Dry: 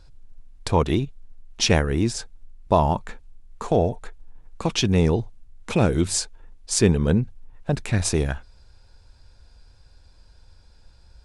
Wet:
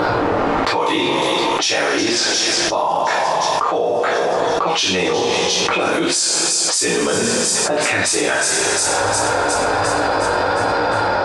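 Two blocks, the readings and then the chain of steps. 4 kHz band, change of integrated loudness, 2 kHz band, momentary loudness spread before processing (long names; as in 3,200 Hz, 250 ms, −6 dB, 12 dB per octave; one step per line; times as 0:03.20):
+13.5 dB, +6.5 dB, +15.5 dB, 15 LU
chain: high-pass filter 630 Hz 12 dB per octave
low-pass that shuts in the quiet parts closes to 1,000 Hz, open at −22.5 dBFS
upward compression, threshold −30 dBFS
chorus effect 1.3 Hz, delay 16.5 ms, depth 5.4 ms
on a send: delay with a high-pass on its return 357 ms, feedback 59%, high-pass 3,900 Hz, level −14 dB
on the sum: coupled-rooms reverb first 0.39 s, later 2.5 s, from −22 dB, DRR −5.5 dB
envelope flattener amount 100%
level −2 dB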